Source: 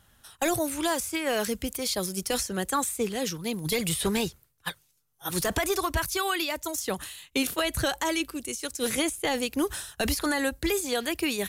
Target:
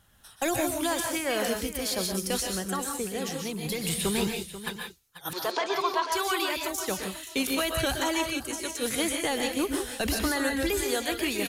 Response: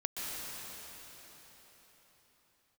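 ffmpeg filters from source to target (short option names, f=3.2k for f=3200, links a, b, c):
-filter_complex "[0:a]asettb=1/sr,asplit=3[a][b][c];[a]atrim=end=2.424[d];[b]atrim=start=2.42:end=3.85,asetpts=PTS-STARTPTS,afade=t=in:d=0.004:c=qsin,afade=t=out:st=1.426:d=0.004:c=qsin,acompressor=threshold=-29dB:ratio=2.5[e];[c]atrim=start=3.846[f];[d][e]acrossfade=d=0.004:c1=hsin:c2=qsin[g];[g][f]acrossfade=d=0.004:c1=qsin:c2=hsin,asettb=1/sr,asplit=3[h][i][j];[h]atrim=end=5.334[k];[i]atrim=start=5.33:end=6.12,asetpts=PTS-STARTPTS,afade=t=in:d=0.004:c=qsin,afade=t=out:st=0.786:d=0.004:c=qsin,highpass=f=370:w=0.5412,highpass=f=370:w=1.3066,equalizer=f=970:t=q:w=4:g=8,equalizer=f=1.8k:t=q:w=4:g=-5,equalizer=f=4.3k:t=q:w=4:g=3,lowpass=f=5.2k:w=0.5412,lowpass=f=5.2k:w=1.3066[l];[j]atrim=start=6.116[m];[k][l]acrossfade=d=0.004:c1=hsin:c2=qsin[n];[n][m]acrossfade=d=0.004:c1=qsin:c2=hsin,aecho=1:1:489:0.224[o];[1:a]atrim=start_sample=2205,afade=t=out:st=0.23:d=0.01,atrim=end_sample=10584[p];[o][p]afir=irnorm=-1:irlink=0"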